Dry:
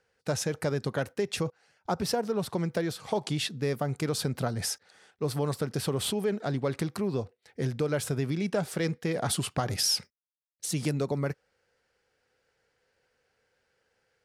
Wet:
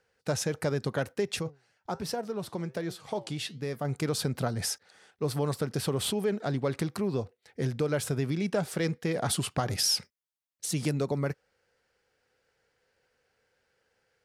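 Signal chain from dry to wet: 1.39–3.85 flange 1.3 Hz, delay 5.3 ms, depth 4.4 ms, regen +84%

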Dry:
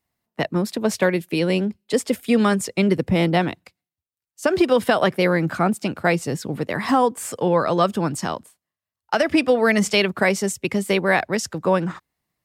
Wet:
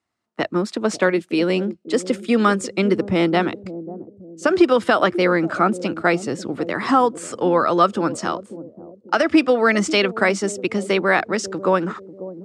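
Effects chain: speaker cabinet 100–8300 Hz, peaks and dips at 150 Hz -9 dB, 330 Hz +5 dB, 1300 Hz +8 dB; analogue delay 0.542 s, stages 2048, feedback 38%, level -13 dB

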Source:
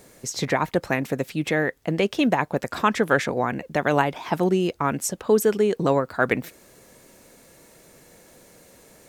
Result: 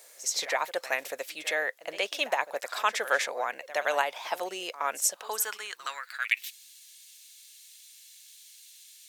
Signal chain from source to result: tilt shelf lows -10 dB, about 1100 Hz; reverse echo 68 ms -15.5 dB; high-pass sweep 570 Hz -> 3300 Hz, 5.08–6.52; gain -8 dB

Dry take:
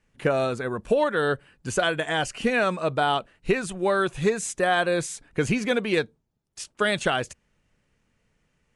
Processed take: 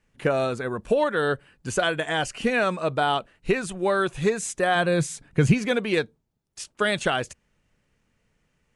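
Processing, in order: 4.75–5.54 bell 140 Hz +10.5 dB 1.1 oct

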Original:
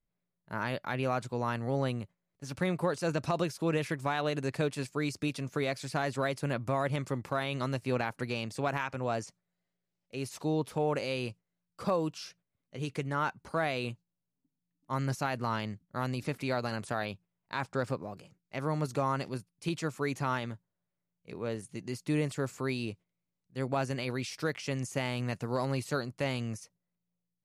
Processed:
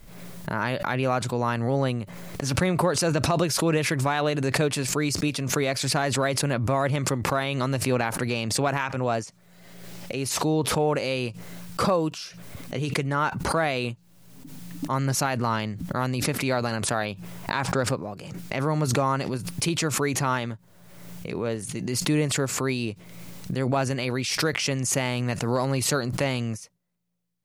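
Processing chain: backwards sustainer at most 38 dB/s; gain +6.5 dB

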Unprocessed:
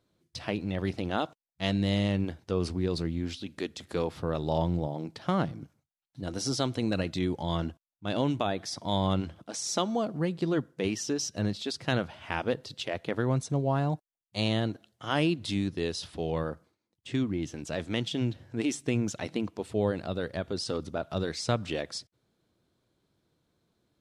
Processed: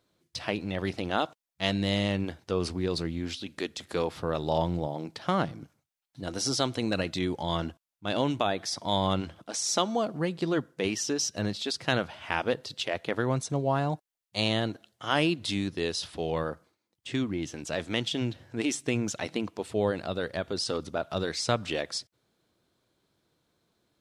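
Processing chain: low shelf 370 Hz -7 dB; gain +4 dB

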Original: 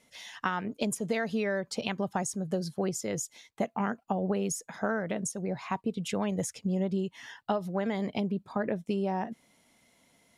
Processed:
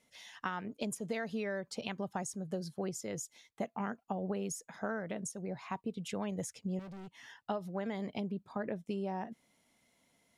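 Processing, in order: 6.79–7.44 hard clip -38.5 dBFS, distortion -15 dB; gain -7 dB

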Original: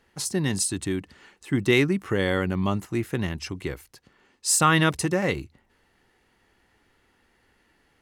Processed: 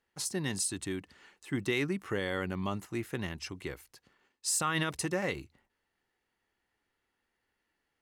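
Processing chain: gate -60 dBFS, range -10 dB; low shelf 370 Hz -5.5 dB; limiter -15 dBFS, peak gain reduction 6.5 dB; gain -5.5 dB

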